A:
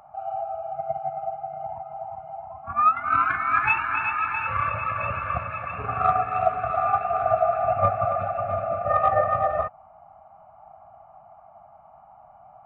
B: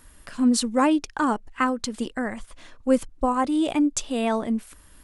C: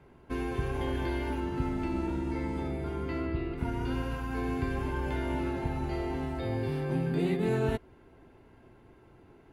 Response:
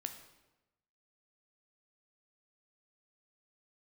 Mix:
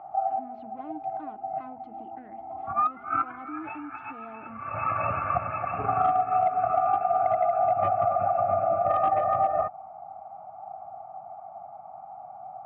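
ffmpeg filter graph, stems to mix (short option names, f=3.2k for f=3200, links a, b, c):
-filter_complex "[0:a]bandreject=f=1k:w=7.6,volume=2dB[a];[1:a]asoftclip=type=hard:threshold=-24dB,volume=-14dB,asplit=2[b][c];[2:a]bandreject=f=50:t=h:w=6,bandreject=f=100:t=h:w=6,bandreject=f=150:t=h:w=6,bandreject=f=200:t=h:w=6,bandreject=f=250:t=h:w=6,bandreject=f=300:t=h:w=6,bandreject=f=350:t=h:w=6,acompressor=threshold=-39dB:ratio=6,volume=-15dB[d];[c]apad=whole_len=558093[e];[a][e]sidechaincompress=threshold=-57dB:ratio=16:attack=16:release=202[f];[b][d]amix=inputs=2:normalize=0,bandreject=f=60:t=h:w=6,bandreject=f=120:t=h:w=6,bandreject=f=180:t=h:w=6,bandreject=f=240:t=h:w=6,alimiter=level_in=17dB:limit=-24dB:level=0:latency=1:release=137,volume=-17dB,volume=0dB[g];[f][g]amix=inputs=2:normalize=0,asoftclip=type=hard:threshold=-14.5dB,highpass=110,equalizer=f=310:t=q:w=4:g=8,equalizer=f=520:t=q:w=4:g=-5,equalizer=f=750:t=q:w=4:g=9,equalizer=f=1.7k:t=q:w=4:g=-8,lowpass=f=2.2k:w=0.5412,lowpass=f=2.2k:w=1.3066,acompressor=threshold=-20dB:ratio=10"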